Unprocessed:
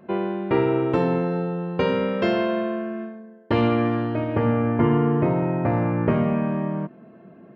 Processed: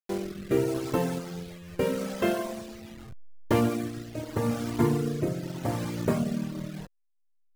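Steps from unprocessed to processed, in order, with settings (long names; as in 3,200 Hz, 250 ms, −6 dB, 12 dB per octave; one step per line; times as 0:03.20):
hold until the input has moved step −27 dBFS
reverb reduction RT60 1.5 s
rotating-speaker cabinet horn 0.8 Hz
level −2 dB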